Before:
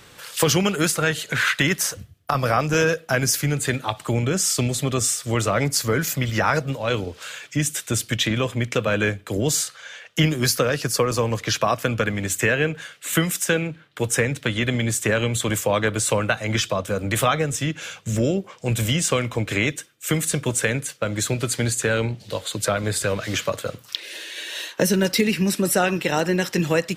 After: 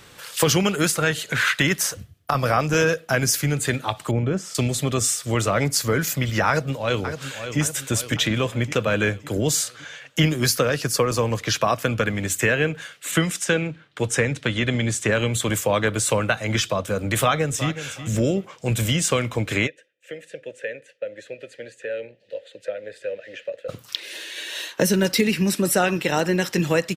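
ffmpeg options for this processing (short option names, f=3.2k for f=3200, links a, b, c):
-filter_complex "[0:a]asettb=1/sr,asplit=3[a][b][c];[a]atrim=end=4.114[d];[b]atrim=start=4.11:end=4.55,asetpts=PTS-STARTPTS,afade=t=in:d=0.004:c=qsin,afade=t=out:st=0.436:d=0.004:c=qsin,lowpass=f=1k:p=1[e];[c]atrim=start=4.546[f];[d][e]acrossfade=d=0.004:c1=hsin:c2=qsin[g];[g][f]acrossfade=d=0.004:c1=qsin:c2=hsin,asplit=2[h][i];[i]afade=t=in:st=6.48:d=0.01,afade=t=out:st=7.6:d=0.01,aecho=0:1:560|1120|1680|2240|2800|3360:0.334965|0.184231|0.101327|0.0557299|0.0306514|0.0168583[j];[h][j]amix=inputs=2:normalize=0,asettb=1/sr,asplit=3[k][l][m];[k]atrim=end=13.114[n];[l]atrim=start=13.11:end=15.13,asetpts=PTS-STARTPTS,afade=t=in:d=0.004:c=qsin,afade=t=out:st=2.016:d=0.004:c=qsin,lowpass=8.3k[o];[m]atrim=start=15.126[p];[n][o]acrossfade=d=0.004:c1=hsin:c2=qsin[q];[q][p]acrossfade=d=0.004:c1=qsin:c2=hsin,asplit=2[r][s];[s]afade=t=in:st=17.21:d=0.01,afade=t=out:st=17.82:d=0.01,aecho=0:1:370|740|1110:0.251189|0.0502377|0.0100475[t];[r][t]amix=inputs=2:normalize=0,asplit=3[u][v][w];[u]afade=t=out:st=19.66:d=0.02[x];[v]asplit=3[y][z][aa];[y]bandpass=f=530:t=q:w=8,volume=0dB[ab];[z]bandpass=f=1.84k:t=q:w=8,volume=-6dB[ac];[aa]bandpass=f=2.48k:t=q:w=8,volume=-9dB[ad];[ab][ac][ad]amix=inputs=3:normalize=0,afade=t=in:st=19.66:d=0.02,afade=t=out:st=23.68:d=0.02[ae];[w]afade=t=in:st=23.68:d=0.02[af];[x][ae][af]amix=inputs=3:normalize=0"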